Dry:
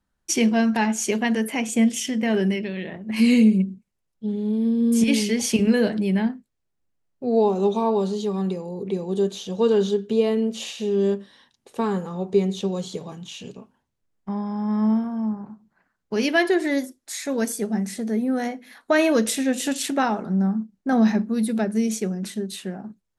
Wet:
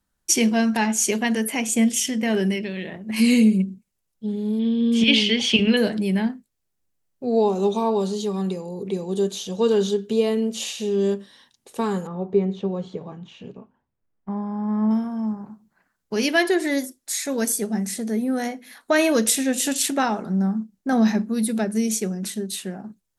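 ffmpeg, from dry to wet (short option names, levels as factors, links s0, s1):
-filter_complex "[0:a]asettb=1/sr,asplit=3[s0][s1][s2];[s0]atrim=end=4.594[s3];[s1]atrim=start=4.59:end=5.77,asetpts=PTS-STARTPTS,afade=t=in:d=0.004:c=qsin,afade=t=out:st=1.176:d=0.004:c=qsin,lowpass=f=3200:t=q:w=4.8[s4];[s2]atrim=start=5.766[s5];[s3][s4]acrossfade=d=0.004:c1=hsin:c2=qsin[s6];[s6][s5]acrossfade=d=0.004:c1=qsin:c2=hsin,asettb=1/sr,asplit=3[s7][s8][s9];[s7]atrim=end=12.074[s10];[s8]atrim=start=12.07:end=14.91,asetpts=PTS-STARTPTS,afade=t=in:d=0.004:c=qsin,afade=t=out:st=2.836:d=0.004:c=qsin,lowpass=1700[s11];[s9]atrim=start=14.906[s12];[s10][s11]acrossfade=d=0.004:c1=hsin:c2=qsin[s13];[s13][s12]acrossfade=d=0.004:c1=qsin:c2=hsin,aemphasis=mode=production:type=cd"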